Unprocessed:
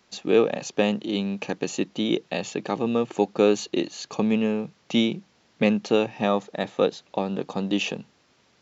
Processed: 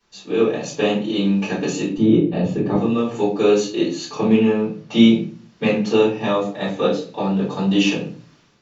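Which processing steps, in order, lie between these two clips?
1.97–2.75 tilt -4.5 dB/oct; AGC; 4.08–5.03 high shelf 6900 Hz -10.5 dB; shoebox room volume 32 m³, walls mixed, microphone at 2.7 m; gain -15 dB

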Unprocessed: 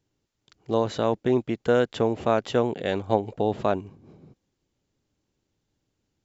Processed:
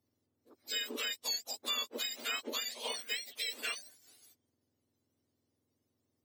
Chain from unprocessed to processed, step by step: spectrum mirrored in octaves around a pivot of 1300 Hz; compressor 2.5:1, threshold -32 dBFS, peak gain reduction 9 dB; gain -4 dB

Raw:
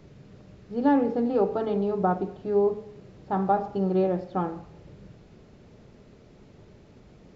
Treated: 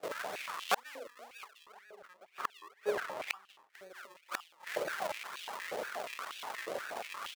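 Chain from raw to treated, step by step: gate with hold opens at -44 dBFS; decimation with a swept rate 41×, swing 100% 2 Hz; 1.66–3.7 high shelf 2200 Hz -8 dB; outdoor echo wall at 27 m, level -27 dB; flipped gate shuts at -28 dBFS, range -40 dB; stepped high-pass 8.4 Hz 550–3000 Hz; gain +13.5 dB

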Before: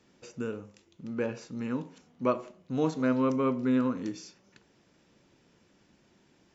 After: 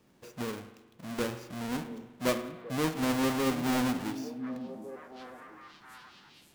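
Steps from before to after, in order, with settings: half-waves squared off; delay with a stepping band-pass 0.727 s, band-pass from 200 Hz, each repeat 1.4 oct, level -7 dB; spring tank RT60 1.2 s, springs 41 ms, chirp 25 ms, DRR 10.5 dB; gain -5.5 dB

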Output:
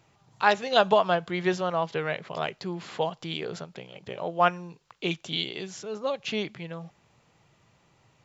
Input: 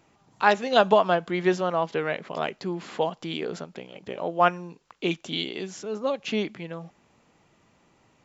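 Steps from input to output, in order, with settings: graphic EQ 125/250/4000 Hz +8/-7/+3 dB; gain -1.5 dB

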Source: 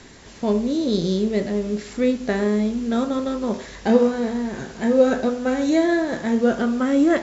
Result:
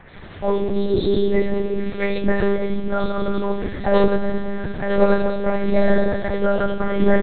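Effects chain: resonant low shelf 110 Hz +8 dB, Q 1.5; notches 60/120/180/240 Hz; three bands offset in time mids, highs, lows 80/140 ms, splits 300/2500 Hz; on a send at -2 dB: reverb RT60 1.5 s, pre-delay 3 ms; on the sum: monotone LPC vocoder at 8 kHz 200 Hz; gain +4 dB

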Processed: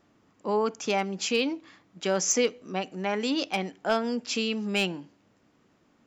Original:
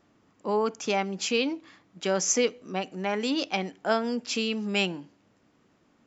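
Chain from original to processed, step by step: hard clip -15 dBFS, distortion -26 dB

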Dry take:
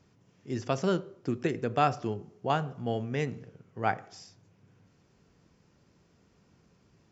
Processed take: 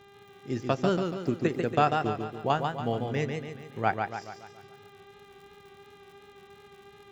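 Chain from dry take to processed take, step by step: transient shaper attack +3 dB, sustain -9 dB; buzz 400 Hz, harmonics 10, -55 dBFS -5 dB/oct; crackle 94/s -48 dBFS; warbling echo 0.142 s, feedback 49%, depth 88 cents, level -5 dB

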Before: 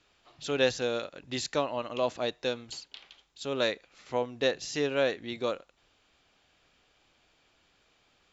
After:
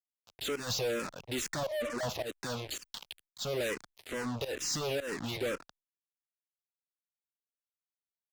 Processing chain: 1.63–2.03 spectral contrast raised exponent 3.4; fuzz box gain 48 dB, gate -49 dBFS; tremolo saw up 1.8 Hz, depth 90%; limiter -21 dBFS, peak gain reduction 10 dB; endless phaser -2.2 Hz; gain -6.5 dB

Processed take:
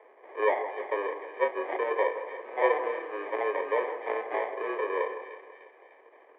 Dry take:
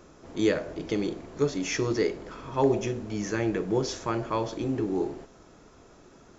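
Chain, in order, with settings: sample-rate reducer 1300 Hz, jitter 0%; split-band echo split 1500 Hz, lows 0.164 s, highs 0.3 s, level -11 dB; mistuned SSB +100 Hz 310–2300 Hz

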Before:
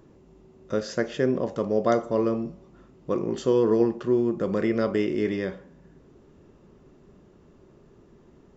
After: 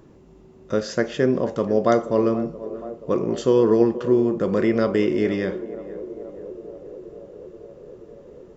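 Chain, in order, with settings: narrowing echo 0.478 s, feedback 81%, band-pass 520 Hz, level -14 dB; gain +4 dB

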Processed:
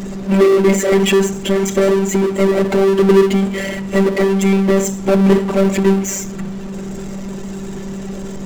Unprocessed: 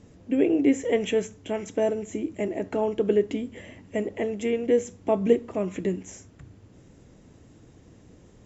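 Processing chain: Schroeder reverb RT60 0.37 s, combs from 27 ms, DRR 13.5 dB; robotiser 194 Hz; power-law curve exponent 0.5; gain +8.5 dB

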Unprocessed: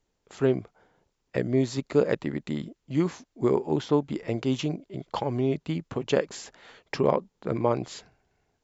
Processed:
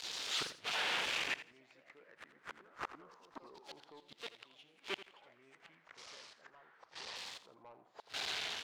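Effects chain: zero-crossing step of -32.5 dBFS; high shelf 2000 Hz -8.5 dB; in parallel at 0 dB: limiter -17.5 dBFS, peak gain reduction 8.5 dB; on the sum: AGC gain up to 7.5 dB; LFO band-pass saw down 0.25 Hz 820–4200 Hz; soft clip -19.5 dBFS, distortion -12 dB; flipped gate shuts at -31 dBFS, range -36 dB; echoes that change speed 0.111 s, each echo +3 st, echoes 2, each echo -6 dB; 5.69–7.16 air absorption 66 m; feedback echo 84 ms, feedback 23%, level -14 dB; gain +6 dB

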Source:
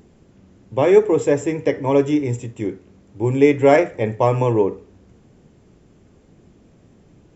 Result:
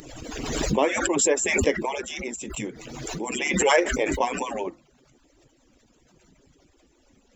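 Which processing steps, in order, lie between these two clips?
median-filter separation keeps percussive; high shelf 2200 Hz +11 dB; backwards sustainer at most 32 dB/s; gain -4.5 dB

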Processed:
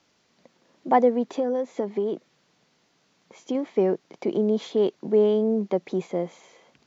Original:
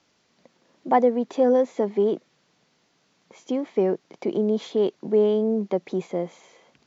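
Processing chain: 1.32–3.55 compressor 4:1, threshold -23 dBFS, peak gain reduction 7.5 dB

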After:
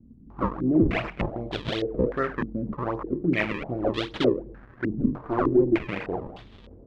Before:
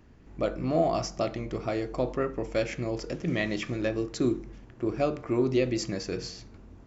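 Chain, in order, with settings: 4.91–5.86 minimum comb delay 0.53 ms; decimation with a swept rate 35×, swing 160% 2.6 Hz; stepped low-pass 3.3 Hz 230–3500 Hz

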